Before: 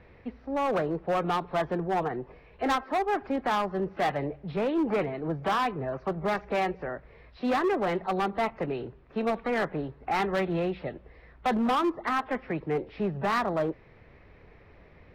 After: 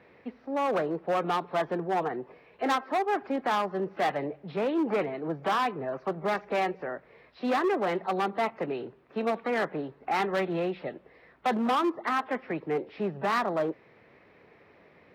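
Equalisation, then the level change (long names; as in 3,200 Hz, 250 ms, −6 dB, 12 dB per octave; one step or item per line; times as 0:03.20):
high-pass filter 200 Hz 12 dB per octave
0.0 dB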